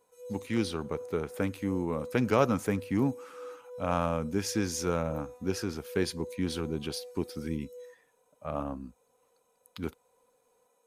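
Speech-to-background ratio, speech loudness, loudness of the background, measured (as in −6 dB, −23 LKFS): 13.5 dB, −32.5 LKFS, −46.0 LKFS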